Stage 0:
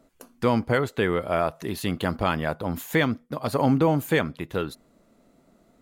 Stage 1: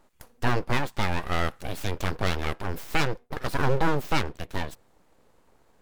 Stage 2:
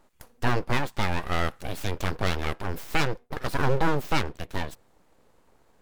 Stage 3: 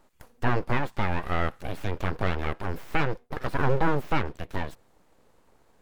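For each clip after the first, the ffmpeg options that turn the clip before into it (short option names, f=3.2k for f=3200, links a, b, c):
-af "aeval=exprs='abs(val(0))':c=same"
-af anull
-filter_complex "[0:a]acrossover=split=2800[a][b];[b]acompressor=threshold=-50dB:ratio=4:attack=1:release=60[c];[a][c]amix=inputs=2:normalize=0"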